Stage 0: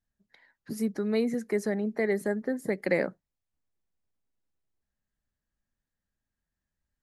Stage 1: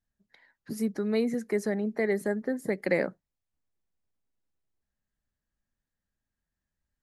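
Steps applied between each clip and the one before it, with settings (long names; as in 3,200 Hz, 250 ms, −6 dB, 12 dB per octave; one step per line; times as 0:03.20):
no processing that can be heard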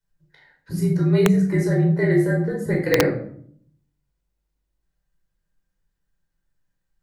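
frequency shifter −48 Hz
rectangular room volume 870 cubic metres, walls furnished, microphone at 4.8 metres
wrap-around overflow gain 7.5 dB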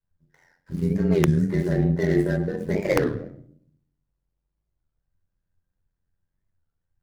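running median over 15 samples
amplitude modulation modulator 87 Hz, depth 50%
wow of a warped record 33 1/3 rpm, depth 250 cents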